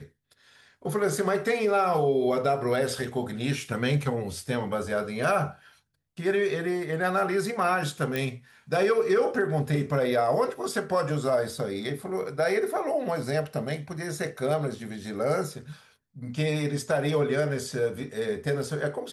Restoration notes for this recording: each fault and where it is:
8.16 s: pop -15 dBFS

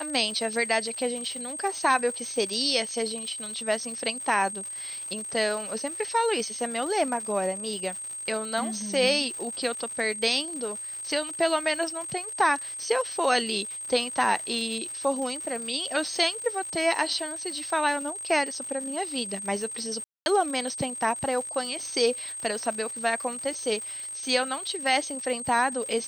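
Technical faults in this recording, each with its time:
crackle 160 per s -34 dBFS
whine 8.4 kHz -34 dBFS
20.04–20.26 s: dropout 221 ms

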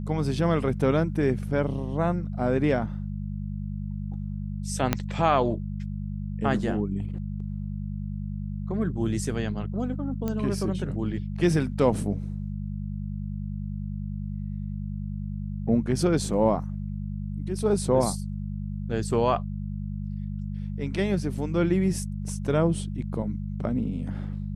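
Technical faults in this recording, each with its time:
hum 50 Hz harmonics 4 -32 dBFS
4.93 s: pop -7 dBFS
10.28 s: pop -17 dBFS

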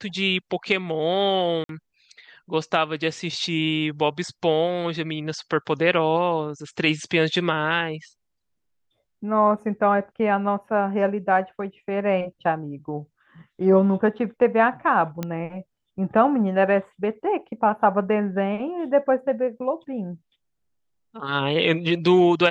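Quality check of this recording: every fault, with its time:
1.64–1.69 s: dropout 52 ms
15.23 s: pop -14 dBFS

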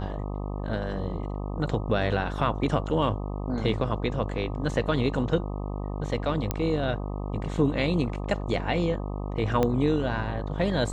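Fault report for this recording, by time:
buzz 50 Hz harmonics 25 -32 dBFS
6.51 s: pop -11 dBFS
9.63 s: pop -12 dBFS

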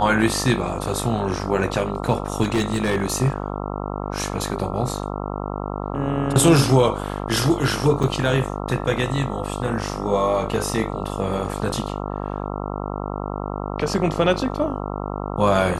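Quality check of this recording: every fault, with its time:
buzz 50 Hz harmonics 27 -28 dBFS
2.42–3.21 s: clipped -15.5 dBFS
8.03–8.04 s: dropout 5.2 ms

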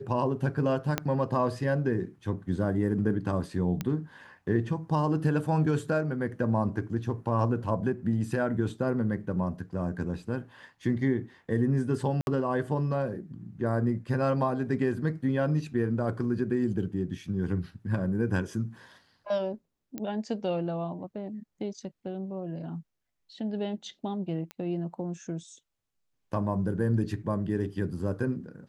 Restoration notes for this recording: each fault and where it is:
0.98 s: pop -11 dBFS
3.81 s: pop -17 dBFS
12.21–12.27 s: dropout 61 ms
19.98 s: pop -21 dBFS
24.51 s: pop -23 dBFS

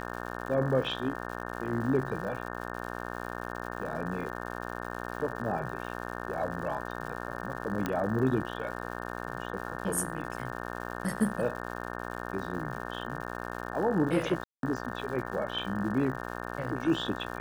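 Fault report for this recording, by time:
buzz 60 Hz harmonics 30 -38 dBFS
crackle 190 per s -40 dBFS
7.86 s: pop -16 dBFS
14.44–14.63 s: dropout 192 ms

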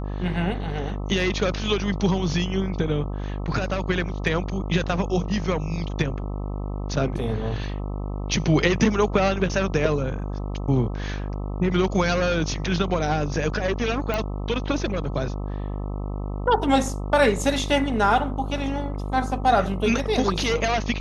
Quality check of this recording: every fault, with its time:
buzz 50 Hz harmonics 26 -29 dBFS
14.14 s: pop -12 dBFS

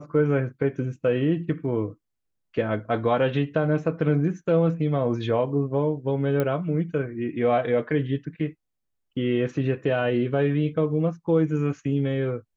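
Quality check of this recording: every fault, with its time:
6.40 s: pop -13 dBFS

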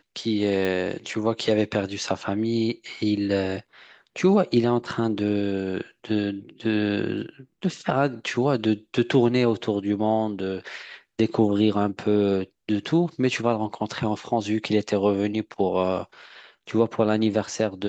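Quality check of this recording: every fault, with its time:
0.65 s: pop -14 dBFS

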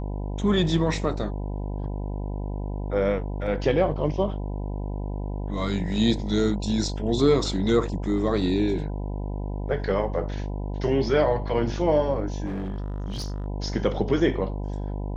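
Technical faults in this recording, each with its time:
buzz 50 Hz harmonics 20 -30 dBFS
12.45–13.46 s: clipped -27 dBFS

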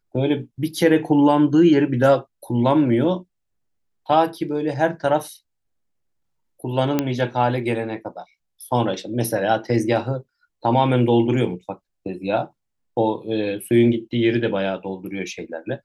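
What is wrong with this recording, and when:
6.99 s: pop -6 dBFS

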